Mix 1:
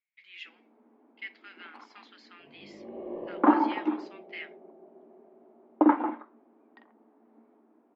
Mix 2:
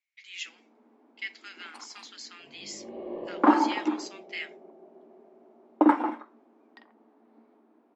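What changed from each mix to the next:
master: remove air absorption 380 m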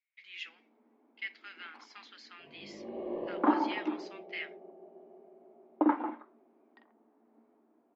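first sound -6.0 dB; second sound: remove air absorption 200 m; master: add air absorption 270 m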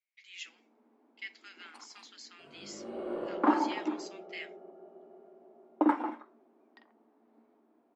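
speech -6.5 dB; second sound: remove Butterworth band-stop 1400 Hz, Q 2.4; master: remove air absorption 270 m

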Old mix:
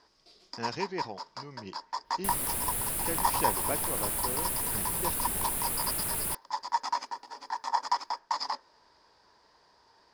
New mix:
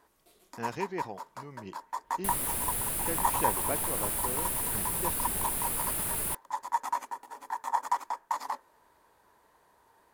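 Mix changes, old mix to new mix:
speech: remove synth low-pass 5100 Hz, resonance Q 2.6; first sound: remove synth low-pass 5000 Hz, resonance Q 9.5

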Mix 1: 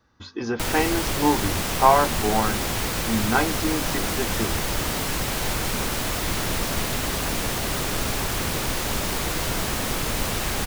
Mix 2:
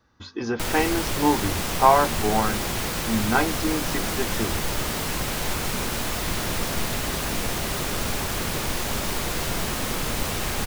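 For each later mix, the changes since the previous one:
background -5.0 dB; reverb: on, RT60 2.4 s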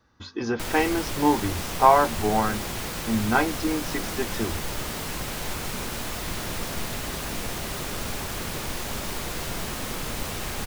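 background -4.5 dB

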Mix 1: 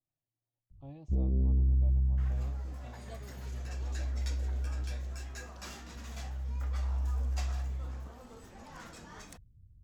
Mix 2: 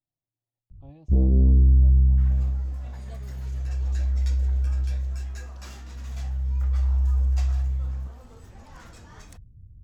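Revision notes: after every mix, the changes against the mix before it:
first sound +10.5 dB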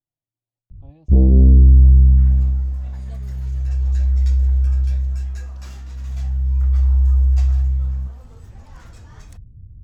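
first sound +7.5 dB

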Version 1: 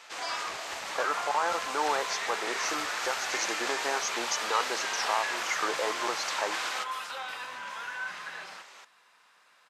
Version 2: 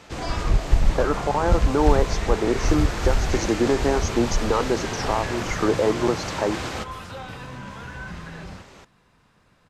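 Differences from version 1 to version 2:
second sound -3.5 dB; master: remove HPF 960 Hz 12 dB/oct

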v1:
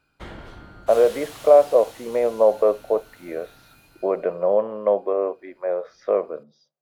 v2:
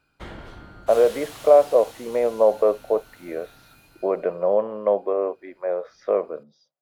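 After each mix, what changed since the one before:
speech: send -8.0 dB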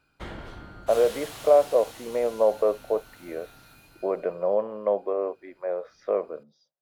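speech -4.0 dB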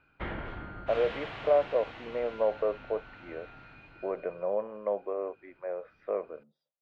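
background +8.0 dB; master: add ladder low-pass 3000 Hz, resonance 30%

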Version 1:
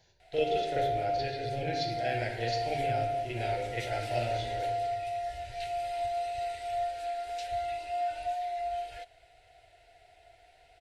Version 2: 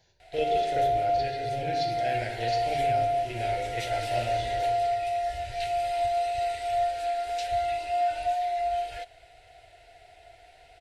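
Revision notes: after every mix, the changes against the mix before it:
background +6.0 dB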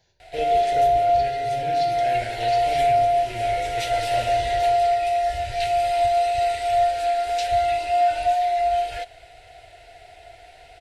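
background +7.0 dB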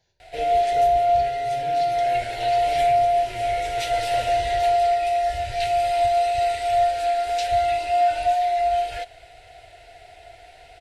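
speech -4.5 dB

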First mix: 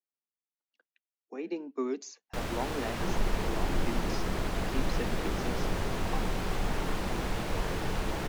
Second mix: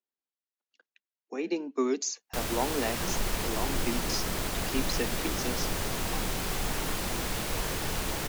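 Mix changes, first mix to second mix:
speech +4.5 dB; second sound -3.5 dB; master: remove LPF 2200 Hz 6 dB/oct

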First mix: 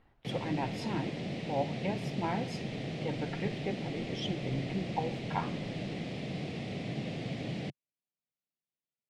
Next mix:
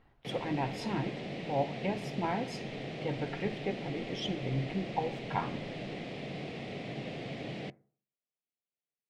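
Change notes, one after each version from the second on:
background: add tone controls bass -8 dB, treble -6 dB; reverb: on, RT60 0.50 s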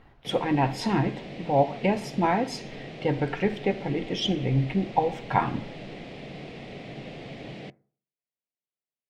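speech +10.0 dB

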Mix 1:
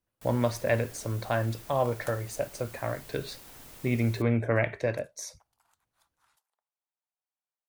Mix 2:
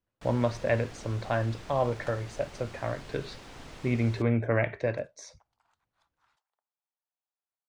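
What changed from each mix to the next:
first sound +7.0 dB; master: add air absorption 120 m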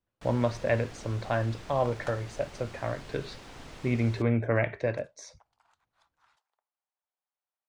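second sound +4.5 dB

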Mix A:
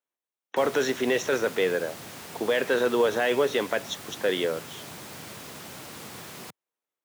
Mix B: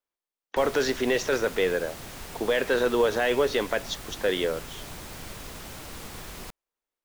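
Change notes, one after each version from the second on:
speech: remove Butterworth band-stop 4700 Hz, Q 4; master: remove HPF 110 Hz 24 dB/oct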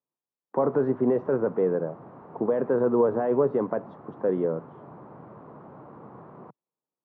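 speech: add tone controls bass +12 dB, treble +2 dB; master: add Chebyshev band-pass 130–1100 Hz, order 3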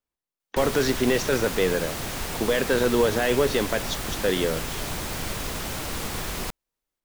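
background +9.5 dB; master: remove Chebyshev band-pass 130–1100 Hz, order 3

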